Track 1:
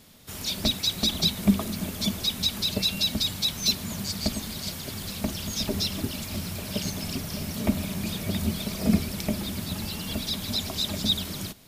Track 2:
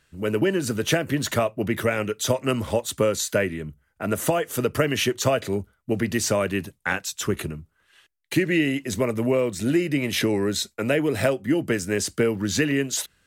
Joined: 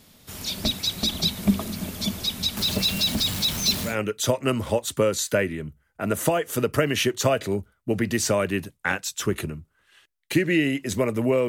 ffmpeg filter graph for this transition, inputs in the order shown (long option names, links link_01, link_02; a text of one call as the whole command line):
ffmpeg -i cue0.wav -i cue1.wav -filter_complex "[0:a]asettb=1/sr,asplit=3[link_01][link_02][link_03];[link_01]atrim=end=2.574[link_04];[link_02]atrim=start=2.57:end=3.96,asetpts=PTS-STARTPTS,afade=type=in:duration=0.004:curve=qsin,afade=type=out:start_time=1.386:duration=0.004:curve=qsin,aeval=exprs='val(0)+0.5*0.0422*sgn(val(0))':channel_layout=same[link_05];[link_03]atrim=start=3.956[link_06];[link_04][link_05]acrossfade=duration=0.004:curve1=hsin:curve2=qsin[link_07];[link_07][link_06]acrossfade=duration=0.004:curve1=qsin:curve2=hsin,apad=whole_dur=11.48,atrim=end=11.48,atrim=end=3.96,asetpts=PTS-STARTPTS[link_08];[1:a]atrim=start=1.85:end=9.49,asetpts=PTS-STARTPTS[link_09];[link_08][link_09]acrossfade=duration=0.12:curve1=tri:curve2=tri" out.wav